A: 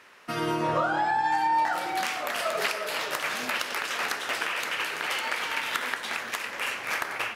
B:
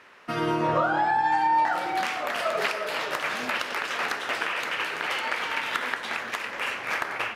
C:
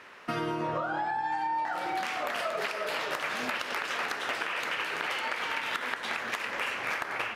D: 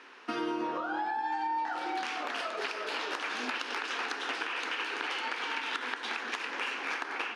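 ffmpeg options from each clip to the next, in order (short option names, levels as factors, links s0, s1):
-af "highshelf=f=5200:g=-11,volume=1.33"
-af "acompressor=threshold=0.0282:ratio=6,volume=1.26"
-af "highpass=f=260:w=0.5412,highpass=f=260:w=1.3066,equalizer=f=280:t=q:w=4:g=5,equalizer=f=600:t=q:w=4:g=-10,equalizer=f=1200:t=q:w=4:g=-3,equalizer=f=2000:t=q:w=4:g=-5,equalizer=f=7700:t=q:w=4:g=-7,lowpass=f=8700:w=0.5412,lowpass=f=8700:w=1.3066"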